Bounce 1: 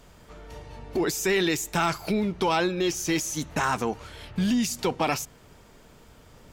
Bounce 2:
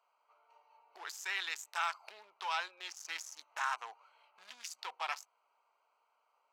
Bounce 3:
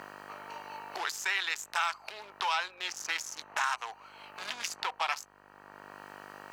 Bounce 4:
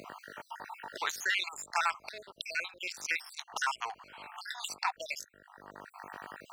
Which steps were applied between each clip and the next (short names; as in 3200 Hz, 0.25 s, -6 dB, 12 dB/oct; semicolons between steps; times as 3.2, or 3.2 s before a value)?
Wiener smoothing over 25 samples; HPF 960 Hz 24 dB/oct; high shelf 7200 Hz -6.5 dB; gain -6 dB
buzz 50 Hz, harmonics 38, -72 dBFS 0 dB/oct; three-band squash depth 70%; gain +7.5 dB
random spectral dropouts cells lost 57%; gain +3 dB